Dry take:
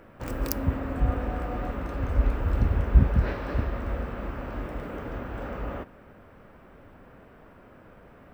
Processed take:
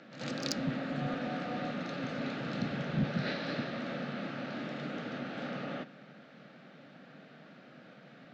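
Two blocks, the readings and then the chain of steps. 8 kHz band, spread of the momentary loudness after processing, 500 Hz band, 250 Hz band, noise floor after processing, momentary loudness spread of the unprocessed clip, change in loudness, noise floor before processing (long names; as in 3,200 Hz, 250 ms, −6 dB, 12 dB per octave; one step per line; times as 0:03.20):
can't be measured, 20 LU, −4.0 dB, −2.0 dB, −55 dBFS, 14 LU, −7.5 dB, −52 dBFS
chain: Chebyshev band-pass filter 140–6,900 Hz, order 5
notch filter 1,000 Hz, Q 8.3
soft clipping −23.5 dBFS, distortion −17 dB
graphic EQ with 15 bands 400 Hz −8 dB, 1,000 Hz −9 dB, 4,000 Hz +12 dB
backwards echo 84 ms −10 dB
level +1.5 dB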